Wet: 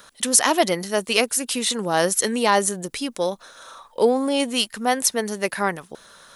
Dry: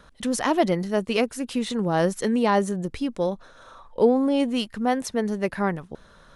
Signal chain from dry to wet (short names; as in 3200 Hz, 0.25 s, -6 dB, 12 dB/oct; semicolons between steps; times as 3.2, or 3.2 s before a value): RIAA curve recording; gain +4 dB